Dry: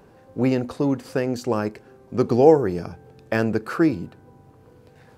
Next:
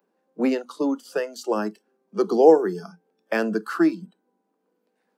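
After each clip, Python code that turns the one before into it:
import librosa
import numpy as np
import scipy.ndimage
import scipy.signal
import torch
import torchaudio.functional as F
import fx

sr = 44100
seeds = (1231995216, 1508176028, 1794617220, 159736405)

y = scipy.signal.sosfilt(scipy.signal.butter(16, 180.0, 'highpass', fs=sr, output='sos'), x)
y = fx.noise_reduce_blind(y, sr, reduce_db=20)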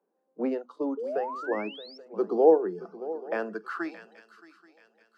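y = fx.echo_swing(x, sr, ms=830, ratio=3, feedback_pct=33, wet_db=-16.0)
y = fx.spec_paint(y, sr, seeds[0], shape='rise', start_s=0.97, length_s=1.01, low_hz=420.0, high_hz=5600.0, level_db=-28.0)
y = fx.filter_sweep_bandpass(y, sr, from_hz=530.0, to_hz=3200.0, start_s=3.11, end_s=4.23, q=0.73)
y = F.gain(torch.from_numpy(y), -4.5).numpy()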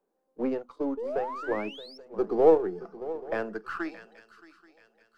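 y = np.where(x < 0.0, 10.0 ** (-3.0 / 20.0) * x, x)
y = F.gain(torch.from_numpy(y), 1.0).numpy()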